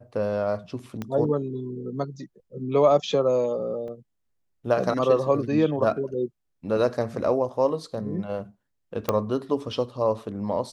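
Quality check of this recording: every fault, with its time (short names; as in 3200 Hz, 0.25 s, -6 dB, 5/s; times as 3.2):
1.02 pop -18 dBFS
3.88 gap 4.1 ms
9.09 pop -9 dBFS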